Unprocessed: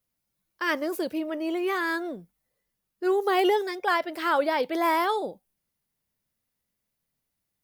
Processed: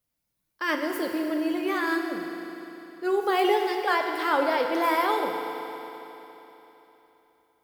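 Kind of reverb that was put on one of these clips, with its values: FDN reverb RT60 3.5 s, high-frequency decay 1×, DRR 2.5 dB; gain -1 dB

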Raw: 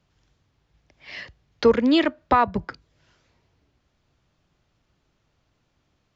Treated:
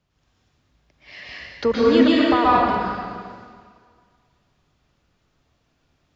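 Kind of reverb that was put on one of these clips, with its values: plate-style reverb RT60 1.9 s, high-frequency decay 1×, pre-delay 0.11 s, DRR -6.5 dB; gain -4 dB

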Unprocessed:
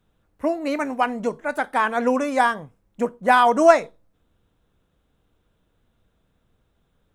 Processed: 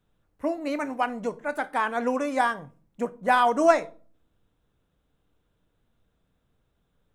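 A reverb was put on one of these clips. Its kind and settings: shoebox room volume 290 m³, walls furnished, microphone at 0.35 m; gain -5 dB

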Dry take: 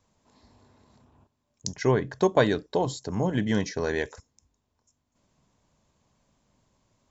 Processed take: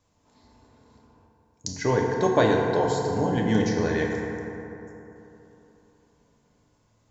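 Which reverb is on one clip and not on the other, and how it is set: FDN reverb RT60 3.3 s, high-frequency decay 0.4×, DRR -1 dB; gain -1 dB

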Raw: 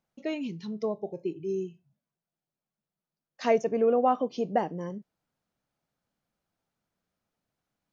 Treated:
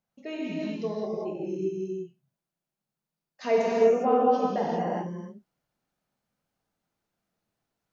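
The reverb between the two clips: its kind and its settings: non-linear reverb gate 0.43 s flat, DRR -6 dB; gain -5 dB

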